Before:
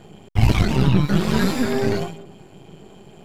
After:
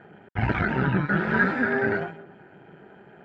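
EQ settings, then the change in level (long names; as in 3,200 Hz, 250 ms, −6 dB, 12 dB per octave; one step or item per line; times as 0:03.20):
high-pass filter 200 Hz 6 dB per octave
Butterworth band-reject 1,100 Hz, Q 6.4
low-pass with resonance 1,600 Hz, resonance Q 4.8
−3.5 dB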